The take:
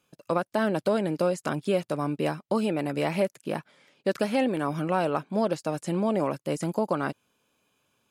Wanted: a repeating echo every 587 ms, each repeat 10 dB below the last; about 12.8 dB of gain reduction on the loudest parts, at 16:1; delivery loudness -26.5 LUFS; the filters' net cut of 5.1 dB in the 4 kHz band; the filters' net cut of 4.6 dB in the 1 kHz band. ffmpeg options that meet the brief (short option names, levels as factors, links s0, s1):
-af "equalizer=f=1000:t=o:g=-6,equalizer=f=4000:t=o:g=-7,acompressor=threshold=0.02:ratio=16,aecho=1:1:587|1174|1761|2348:0.316|0.101|0.0324|0.0104,volume=4.47"